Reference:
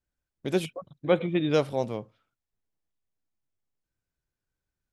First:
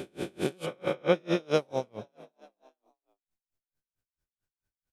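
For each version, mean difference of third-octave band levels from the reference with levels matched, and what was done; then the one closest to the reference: 10.5 dB: reverse spectral sustain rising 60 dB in 2.32 s; treble shelf 11 kHz +2.5 dB; frequency-shifting echo 293 ms, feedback 46%, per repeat +44 Hz, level -17.5 dB; logarithmic tremolo 4.5 Hz, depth 34 dB; trim -2 dB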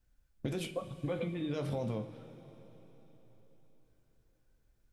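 8.0 dB: bass shelf 130 Hz +11 dB; peak limiter -23 dBFS, peak gain reduction 13 dB; compression 6:1, threshold -39 dBFS, peak gain reduction 11.5 dB; two-slope reverb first 0.23 s, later 4.4 s, from -19 dB, DRR 3.5 dB; trim +5 dB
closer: second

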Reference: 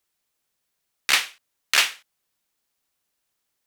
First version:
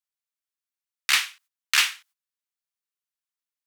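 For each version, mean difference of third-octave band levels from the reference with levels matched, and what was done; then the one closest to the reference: 3.0 dB: gate -53 dBFS, range -17 dB; high-pass 980 Hz 24 dB/octave; in parallel at -5 dB: saturation -20.5 dBFS, distortion -6 dB; on the sum: trim -3 dB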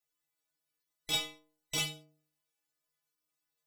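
8.5 dB: every band turned upside down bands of 2 kHz; in parallel at -1 dB: compression, threshold -33 dBFS, peak gain reduction 18.5 dB; on the sum: inharmonic resonator 150 Hz, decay 0.55 s, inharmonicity 0.008; trim -1 dB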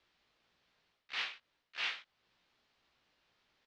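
12.5 dB: low-pass 4.3 kHz 24 dB/octave; reverse; compression 8:1, threshold -27 dBFS, peak gain reduction 13 dB; reverse; slow attack 579 ms; doubling 17 ms -7 dB; trim +7 dB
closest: first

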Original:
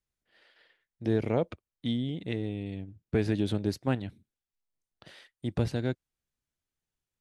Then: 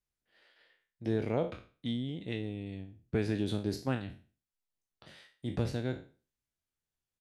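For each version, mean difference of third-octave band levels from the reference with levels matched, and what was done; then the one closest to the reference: 2.0 dB: spectral sustain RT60 0.37 s; resampled via 32 kHz; trim -4.5 dB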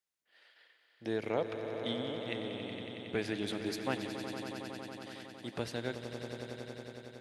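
10.0 dB: high-pass 740 Hz 6 dB/octave; echo with a slow build-up 92 ms, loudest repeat 5, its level -11.5 dB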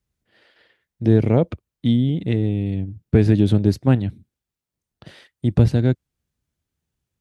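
4.0 dB: high-pass 51 Hz; bass shelf 300 Hz +12 dB; trim +5 dB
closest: first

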